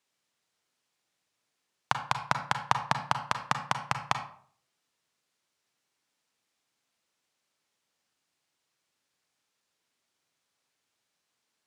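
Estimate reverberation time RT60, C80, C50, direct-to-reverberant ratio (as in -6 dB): 0.55 s, 13.0 dB, 9.0 dB, 6.5 dB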